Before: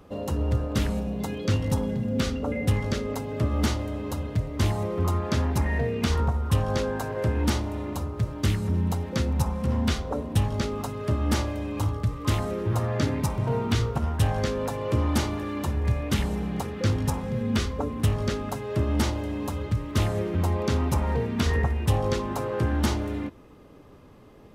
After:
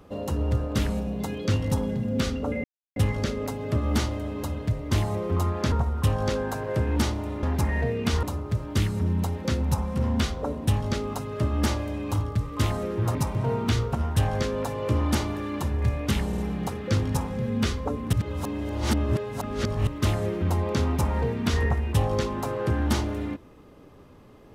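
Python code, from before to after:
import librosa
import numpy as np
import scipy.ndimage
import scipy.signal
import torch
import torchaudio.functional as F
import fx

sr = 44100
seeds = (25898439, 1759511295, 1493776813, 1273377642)

y = fx.edit(x, sr, fx.insert_silence(at_s=2.64, length_s=0.32),
    fx.move(start_s=5.4, length_s=0.8, to_s=7.91),
    fx.cut(start_s=12.83, length_s=0.35),
    fx.stutter(start_s=16.31, slice_s=0.05, count=3),
    fx.reverse_span(start_s=18.06, length_s=1.74), tone=tone)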